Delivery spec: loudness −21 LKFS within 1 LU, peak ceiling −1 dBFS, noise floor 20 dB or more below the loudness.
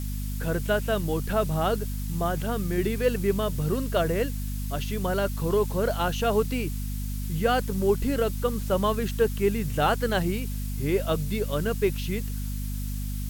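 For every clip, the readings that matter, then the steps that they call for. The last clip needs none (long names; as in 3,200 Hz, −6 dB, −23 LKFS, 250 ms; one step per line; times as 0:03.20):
mains hum 50 Hz; hum harmonics up to 250 Hz; level of the hum −28 dBFS; background noise floor −31 dBFS; target noise floor −47 dBFS; integrated loudness −27.0 LKFS; sample peak −10.0 dBFS; target loudness −21.0 LKFS
→ mains-hum notches 50/100/150/200/250 Hz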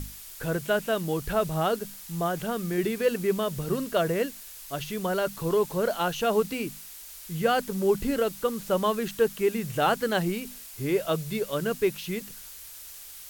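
mains hum none found; background noise floor −44 dBFS; target noise floor −48 dBFS
→ broadband denoise 6 dB, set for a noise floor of −44 dBFS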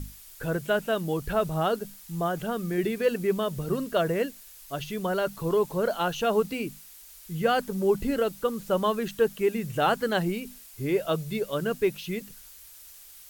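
background noise floor −49 dBFS; integrated loudness −28.0 LKFS; sample peak −11.0 dBFS; target loudness −21.0 LKFS
→ level +7 dB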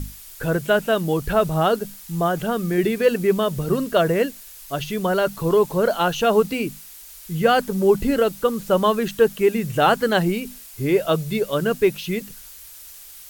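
integrated loudness −21.0 LKFS; sample peak −4.0 dBFS; background noise floor −42 dBFS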